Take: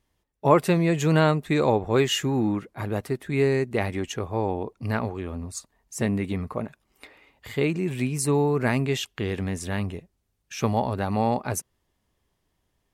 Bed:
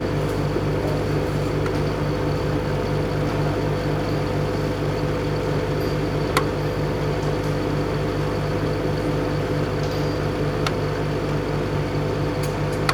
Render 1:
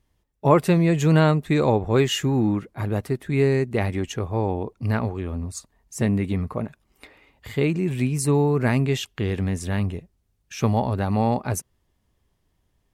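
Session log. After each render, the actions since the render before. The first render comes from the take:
low-shelf EQ 200 Hz +7 dB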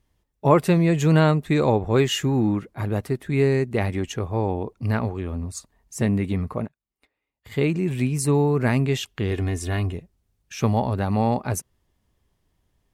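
0:06.65–0:07.52: expander for the loud parts 2.5 to 1, over −50 dBFS
0:09.31–0:09.93: comb filter 2.8 ms, depth 64%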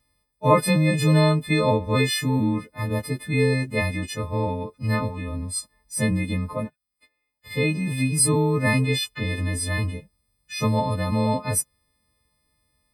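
every partial snapped to a pitch grid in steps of 3 semitones
notch comb filter 370 Hz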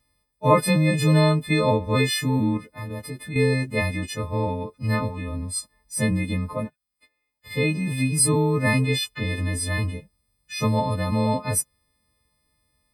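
0:02.57–0:03.36: downward compressor 2 to 1, threshold −34 dBFS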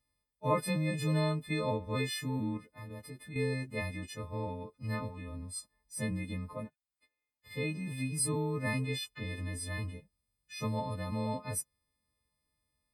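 level −12.5 dB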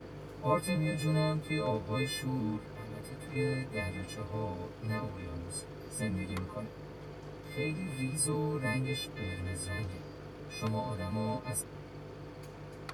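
mix in bed −23.5 dB

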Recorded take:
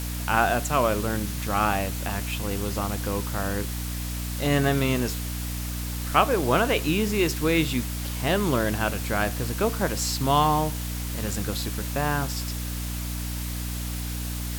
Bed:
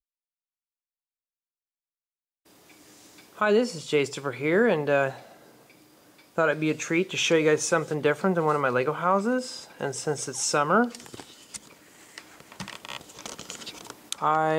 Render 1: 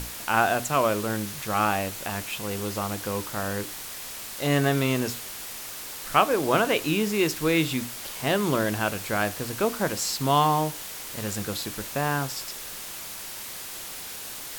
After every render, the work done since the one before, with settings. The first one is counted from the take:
mains-hum notches 60/120/180/240/300 Hz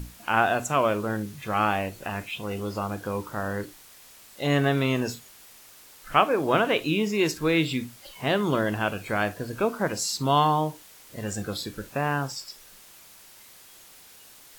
noise reduction from a noise print 13 dB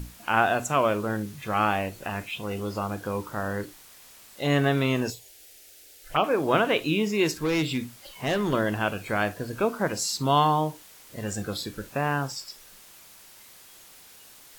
0:05.10–0:06.24: phaser swept by the level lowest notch 160 Hz, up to 1,800 Hz, full sweep at −20 dBFS
0:07.43–0:08.53: hard clipping −21 dBFS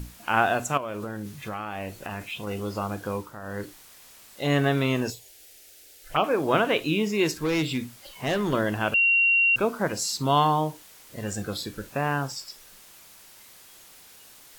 0:00.77–0:02.47: downward compressor 12 to 1, threshold −28 dBFS
0:03.13–0:03.66: duck −11 dB, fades 0.26 s
0:08.94–0:09.56: beep over 2,750 Hz −17 dBFS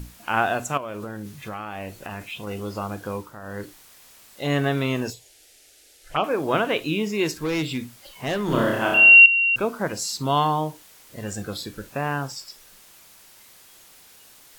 0:05.13–0:06.24: low-pass filter 11,000 Hz
0:08.45–0:09.26: flutter between parallel walls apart 5.3 metres, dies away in 0.87 s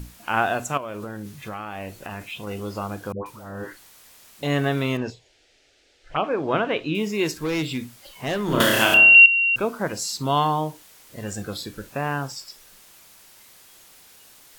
0:03.12–0:04.43: all-pass dispersion highs, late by 139 ms, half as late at 770 Hz
0:04.97–0:06.95: high-frequency loss of the air 150 metres
0:08.60–0:09.15: multiband upward and downward compressor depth 100%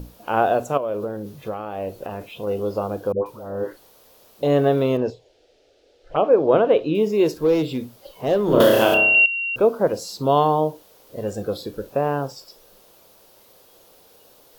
octave-band graphic EQ 500/2,000/8,000 Hz +12/−9/−9 dB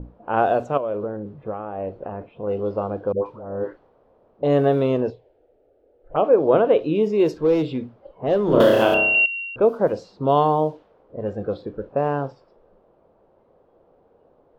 low-pass filter 2,800 Hz 6 dB per octave
low-pass that shuts in the quiet parts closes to 840 Hz, open at −14 dBFS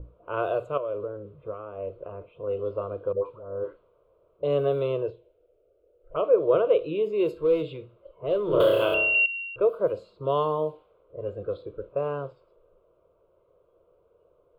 phaser with its sweep stopped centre 1,200 Hz, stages 8
tuned comb filter 70 Hz, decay 0.55 s, harmonics odd, mix 40%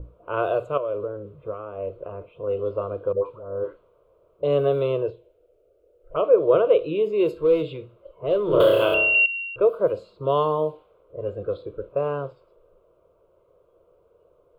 level +3.5 dB

